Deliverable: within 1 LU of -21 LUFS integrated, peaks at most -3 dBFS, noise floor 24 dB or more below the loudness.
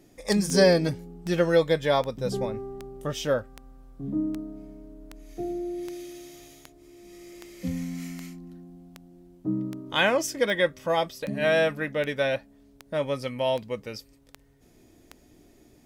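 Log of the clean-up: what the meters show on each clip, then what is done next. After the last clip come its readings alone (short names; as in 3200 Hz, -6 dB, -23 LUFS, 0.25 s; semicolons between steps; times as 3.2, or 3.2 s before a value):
clicks 20; loudness -27.0 LUFS; peak -7.0 dBFS; loudness target -21.0 LUFS
-> de-click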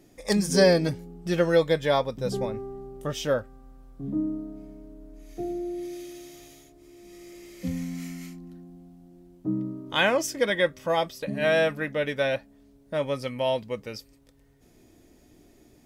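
clicks 0; loudness -27.0 LUFS; peak -7.0 dBFS; loudness target -21.0 LUFS
-> gain +6 dB; limiter -3 dBFS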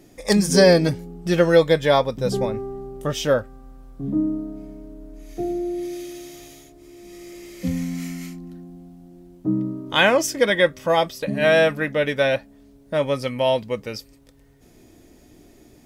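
loudness -21.0 LUFS; peak -3.0 dBFS; noise floor -52 dBFS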